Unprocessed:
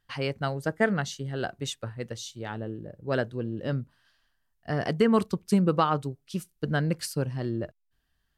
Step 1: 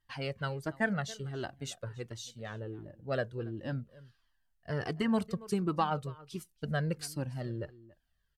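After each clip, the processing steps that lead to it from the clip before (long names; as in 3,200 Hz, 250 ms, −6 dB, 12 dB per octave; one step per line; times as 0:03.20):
slap from a distant wall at 48 metres, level −20 dB
flanger whose copies keep moving one way falling 1.4 Hz
level −1.5 dB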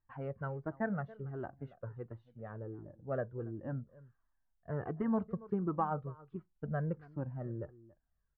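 low-pass filter 1,400 Hz 24 dB per octave
level −3 dB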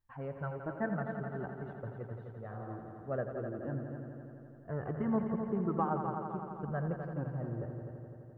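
healed spectral selection 0:02.53–0:02.73, 390–1,500 Hz before
on a send: echo machine with several playback heads 85 ms, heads all three, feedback 68%, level −11 dB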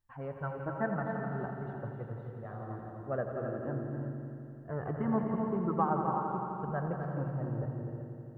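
dynamic equaliser 1,000 Hz, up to +4 dB, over −48 dBFS, Q 1.1
reverb whose tail is shaped and stops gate 400 ms rising, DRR 5 dB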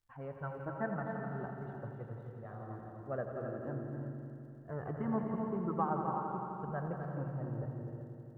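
surface crackle 72 per second −64 dBFS
level −4 dB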